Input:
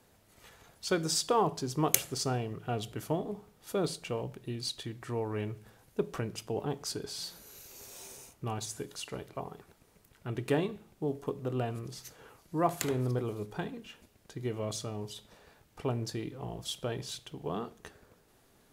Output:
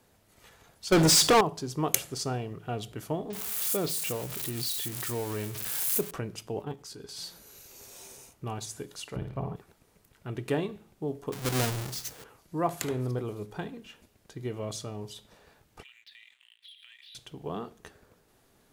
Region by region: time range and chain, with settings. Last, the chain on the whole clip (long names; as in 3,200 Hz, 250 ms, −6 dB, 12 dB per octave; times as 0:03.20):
0:00.92–0:01.41: high-pass filter 47 Hz + leveller curve on the samples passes 5
0:03.30–0:06.11: spike at every zero crossing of −26 dBFS + multiband delay without the direct sound lows, highs 30 ms, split 5,300 Hz + background raised ahead of every attack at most 28 dB per second
0:06.62–0:07.17: output level in coarse steps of 11 dB + notch filter 640 Hz, Q 5.6 + double-tracking delay 15 ms −10.5 dB
0:09.16–0:09.56: bass and treble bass +12 dB, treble −9 dB + flutter between parallel walls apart 9.5 metres, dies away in 0.48 s
0:11.32–0:12.24: each half-wave held at its own peak + high-shelf EQ 3,600 Hz +10 dB
0:15.83–0:17.15: elliptic band-pass filter 1,900–3,800 Hz, stop band 60 dB + leveller curve on the samples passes 2 + downward compressor 12 to 1, threshold −48 dBFS
whole clip: no processing